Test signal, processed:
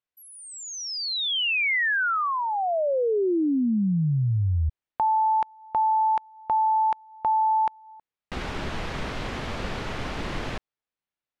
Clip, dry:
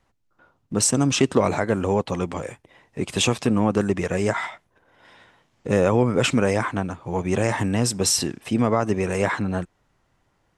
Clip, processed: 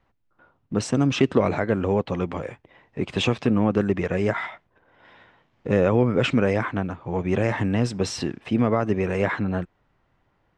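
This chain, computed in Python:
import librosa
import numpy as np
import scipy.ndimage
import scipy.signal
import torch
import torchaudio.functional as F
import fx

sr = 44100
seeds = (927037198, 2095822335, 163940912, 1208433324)

y = scipy.signal.sosfilt(scipy.signal.butter(2, 3200.0, 'lowpass', fs=sr, output='sos'), x)
y = fx.dynamic_eq(y, sr, hz=930.0, q=1.7, threshold_db=-33.0, ratio=4.0, max_db=-4)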